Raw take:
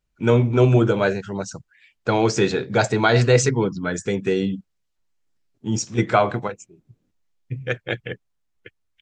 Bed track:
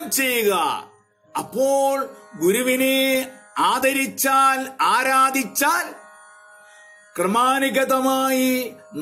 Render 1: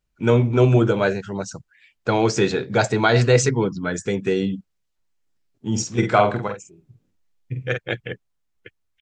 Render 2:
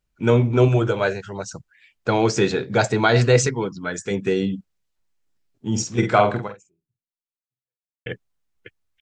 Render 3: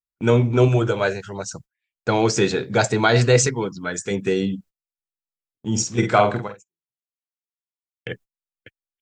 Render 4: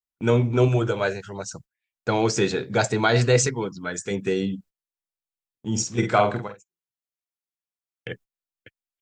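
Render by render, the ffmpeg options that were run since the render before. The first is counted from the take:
-filter_complex "[0:a]asplit=3[a][b][c];[a]afade=t=out:st=5.75:d=0.02[d];[b]asplit=2[e][f];[f]adelay=48,volume=-6dB[g];[e][g]amix=inputs=2:normalize=0,afade=t=in:st=5.75:d=0.02,afade=t=out:st=7.77:d=0.02[h];[c]afade=t=in:st=7.77:d=0.02[i];[d][h][i]amix=inputs=3:normalize=0"
-filter_complex "[0:a]asettb=1/sr,asplit=3[a][b][c];[a]atrim=end=0.684[d];[b]atrim=start=0.68:end=1.55,asetpts=PTS-STARTPTS,afade=t=in:d=0.004:c=qsin,afade=t=out:st=0.866:d=0.004:c=qsin,equalizer=f=230:w=1.3:g=-8.5[e];[c]atrim=start=1.546[f];[d][e]acrossfade=d=0.004:c1=hsin:c2=qsin[g];[g][f]acrossfade=d=0.004:c1=qsin:c2=hsin,asettb=1/sr,asplit=3[h][i][j];[h]atrim=end=3.474[k];[i]atrim=start=3.47:end=4.11,asetpts=PTS-STARTPTS,afade=t=in:d=0.004:c=qsin,afade=t=out:st=0.636:d=0.004:c=qsin,lowshelf=f=410:g=-7[l];[j]atrim=start=4.106[m];[k][l]acrossfade=d=0.004:c1=hsin:c2=qsin[n];[n][m]acrossfade=d=0.004:c1=qsin:c2=hsin,asplit=2[o][p];[o]atrim=end=8.06,asetpts=PTS-STARTPTS,afade=t=out:st=6.39:d=1.67:c=exp[q];[p]atrim=start=8.06,asetpts=PTS-STARTPTS,afade=t=in:d=0.004:c=hsin[r];[q][r]concat=n=2:v=0:a=1"
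-af "agate=range=-29dB:threshold=-42dB:ratio=16:detection=peak,highshelf=f=7.5k:g=9"
-af "volume=-3dB"

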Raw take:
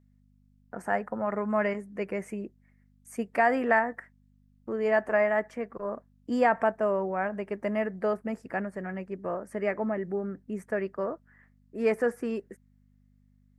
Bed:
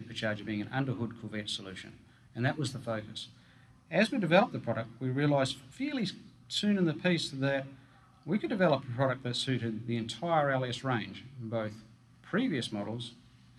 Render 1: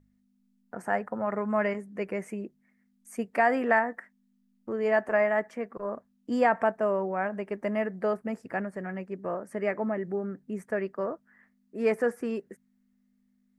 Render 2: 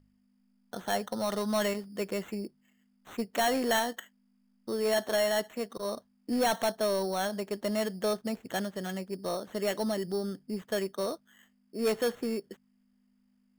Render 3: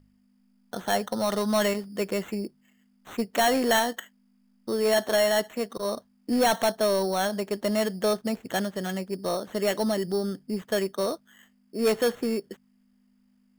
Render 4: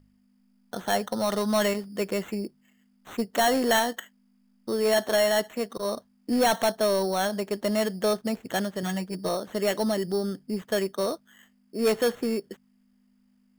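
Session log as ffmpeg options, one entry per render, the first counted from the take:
-af "bandreject=f=50:t=h:w=4,bandreject=f=100:t=h:w=4,bandreject=f=150:t=h:w=4"
-af "acrusher=samples=9:mix=1:aa=0.000001,asoftclip=type=tanh:threshold=-21.5dB"
-af "volume=5dB"
-filter_complex "[0:a]asettb=1/sr,asplit=3[a][b][c];[a]atrim=end=3.174[d];[b]atrim=start=3.17:end=3.68,asetpts=PTS-STARTPTS,afade=t=in:d=0.004:c=qsin,afade=t=out:st=0.506:d=0.004:c=qsin,equalizer=f=2.4k:w=6.2:g=-7[e];[c]atrim=start=3.676[f];[d][e]acrossfade=d=0.004:c1=hsin:c2=qsin[g];[g][f]acrossfade=d=0.004:c1=qsin:c2=hsin,asettb=1/sr,asplit=3[h][i][j];[h]atrim=end=8.824[k];[i]atrim=start=8.82:end=9.29,asetpts=PTS-STARTPTS,afade=t=in:d=0.004:c=qsin,afade=t=out:st=0.466:d=0.004:c=qsin,aecho=1:1:6.4:0.66,atrim=end_sample=20727[l];[j]atrim=start=9.286[m];[k][l]acrossfade=d=0.004:c1=hsin:c2=qsin[n];[n][m]acrossfade=d=0.004:c1=qsin:c2=hsin"

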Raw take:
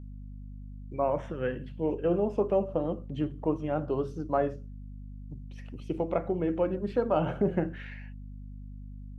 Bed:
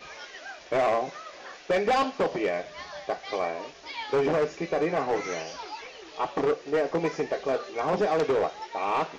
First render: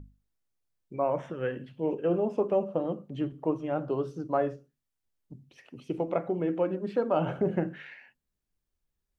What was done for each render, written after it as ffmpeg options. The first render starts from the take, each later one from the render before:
-af "bandreject=f=50:t=h:w=6,bandreject=f=100:t=h:w=6,bandreject=f=150:t=h:w=6,bandreject=f=200:t=h:w=6,bandreject=f=250:t=h:w=6"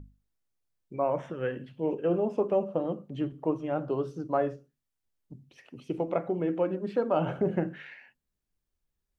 -af anull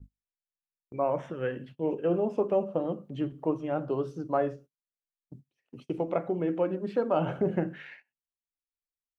-af "agate=range=-26dB:threshold=-48dB:ratio=16:detection=peak"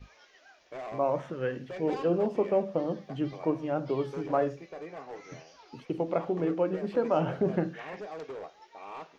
-filter_complex "[1:a]volume=-16dB[a];[0:a][a]amix=inputs=2:normalize=0"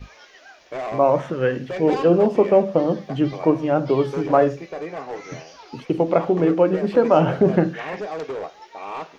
-af "volume=11dB"

